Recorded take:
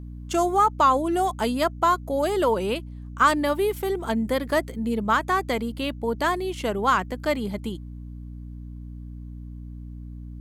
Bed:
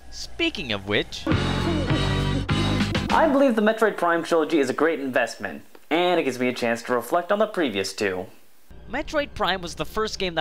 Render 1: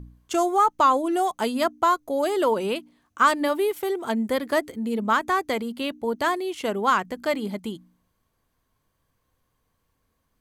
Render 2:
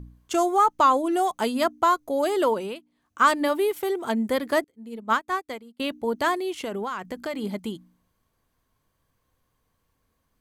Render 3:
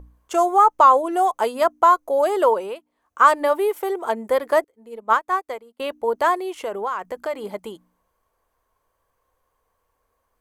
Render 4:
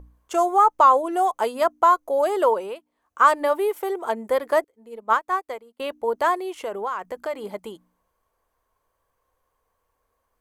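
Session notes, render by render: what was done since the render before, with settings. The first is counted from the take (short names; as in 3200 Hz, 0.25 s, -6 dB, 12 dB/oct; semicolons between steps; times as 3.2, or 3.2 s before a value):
de-hum 60 Hz, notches 5
2.45–3.25 dip -13.5 dB, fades 0.36 s; 4.64–5.8 upward expander 2.5:1, over -37 dBFS; 6.63–7.44 compressor 16:1, threshold -26 dBFS
graphic EQ 125/250/500/1000/4000 Hz -11/-8/+7/+6/-5 dB
gain -2 dB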